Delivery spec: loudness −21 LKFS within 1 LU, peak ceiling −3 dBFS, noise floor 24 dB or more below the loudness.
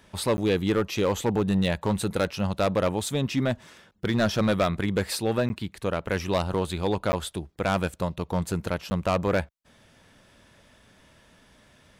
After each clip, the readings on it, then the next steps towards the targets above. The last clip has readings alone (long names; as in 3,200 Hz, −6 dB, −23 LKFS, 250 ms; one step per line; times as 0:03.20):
share of clipped samples 1.3%; peaks flattened at −17.0 dBFS; number of dropouts 4; longest dropout 10 ms; integrated loudness −27.0 LKFS; sample peak −17.0 dBFS; target loudness −21.0 LKFS
→ clipped peaks rebuilt −17 dBFS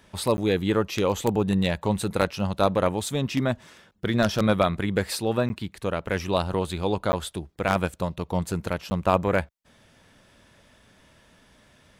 share of clipped samples 0.0%; number of dropouts 4; longest dropout 10 ms
→ repair the gap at 0:00.37/0:05.49/0:07.12/0:08.90, 10 ms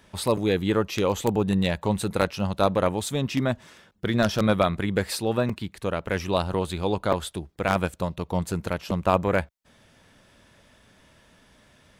number of dropouts 0; integrated loudness −25.5 LKFS; sample peak −8.0 dBFS; target loudness −21.0 LKFS
→ level +4.5 dB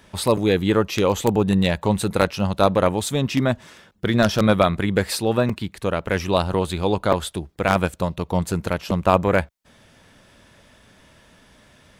integrated loudness −21.0 LKFS; sample peak −3.5 dBFS; background noise floor −54 dBFS